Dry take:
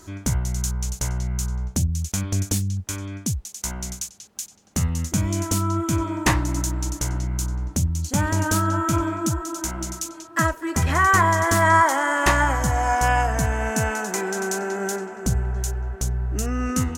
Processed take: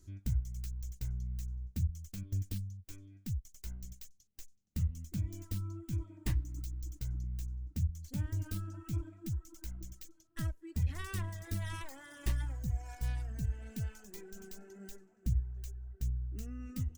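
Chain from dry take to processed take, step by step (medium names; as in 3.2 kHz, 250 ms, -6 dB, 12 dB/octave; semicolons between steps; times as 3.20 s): tracing distortion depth 0.35 ms; reverb removal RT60 1.9 s; amplifier tone stack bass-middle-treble 10-0-1; trim +1 dB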